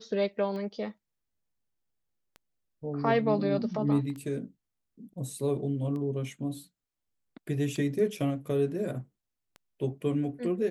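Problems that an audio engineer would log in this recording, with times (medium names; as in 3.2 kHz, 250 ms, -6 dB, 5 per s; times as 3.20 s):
tick 33 1/3 rpm -30 dBFS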